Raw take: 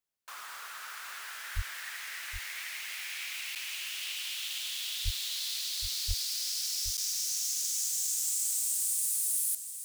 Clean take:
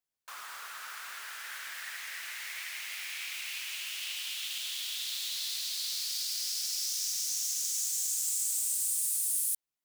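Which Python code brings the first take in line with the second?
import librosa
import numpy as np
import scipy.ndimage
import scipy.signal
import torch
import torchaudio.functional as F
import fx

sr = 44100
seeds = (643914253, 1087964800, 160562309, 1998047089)

y = fx.fix_declip(x, sr, threshold_db=-21.0)
y = fx.highpass(y, sr, hz=140.0, slope=24, at=(1.55, 1.67), fade=0.02)
y = fx.highpass(y, sr, hz=140.0, slope=24, at=(5.04, 5.16), fade=0.02)
y = fx.highpass(y, sr, hz=140.0, slope=24, at=(6.07, 6.19), fade=0.02)
y = fx.fix_interpolate(y, sr, at_s=(3.55, 6.97), length_ms=7.9)
y = fx.fix_echo_inverse(y, sr, delay_ms=769, level_db=-10.5)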